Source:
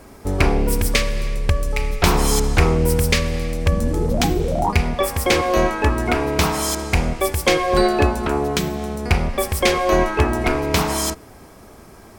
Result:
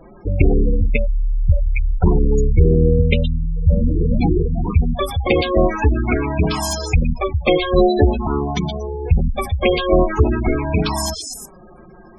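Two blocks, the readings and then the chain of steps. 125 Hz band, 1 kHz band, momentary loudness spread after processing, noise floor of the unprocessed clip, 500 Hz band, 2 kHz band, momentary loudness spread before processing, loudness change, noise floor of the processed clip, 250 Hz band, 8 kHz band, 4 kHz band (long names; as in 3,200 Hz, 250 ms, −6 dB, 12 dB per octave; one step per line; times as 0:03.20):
+4.0 dB, −3.5 dB, 7 LU, −43 dBFS, +1.0 dB, −4.0 dB, 6 LU, +1.5 dB, −43 dBFS, +2.5 dB, −6.5 dB, −3.5 dB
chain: flanger swept by the level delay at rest 6.4 ms, full sweep at −12.5 dBFS
echo through a band-pass that steps 118 ms, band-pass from 3,900 Hz, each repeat 0.7 octaves, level −2 dB
gate on every frequency bin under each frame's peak −15 dB strong
level +4.5 dB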